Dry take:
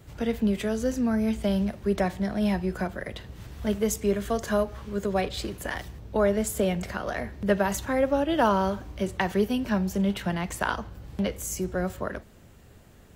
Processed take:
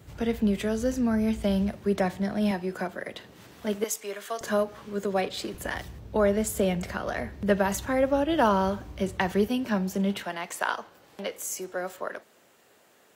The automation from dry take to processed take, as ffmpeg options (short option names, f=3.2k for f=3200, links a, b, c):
-af "asetnsamples=n=441:p=0,asendcmd='1.77 highpass f 110;2.51 highpass f 230;3.84 highpass f 720;4.41 highpass f 190;5.54 highpass f 52;9.48 highpass f 160;10.23 highpass f 450',highpass=41"